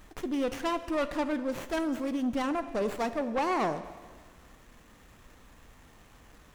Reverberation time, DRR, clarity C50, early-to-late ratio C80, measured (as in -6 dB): 1.6 s, 11.0 dB, 12.5 dB, 14.0 dB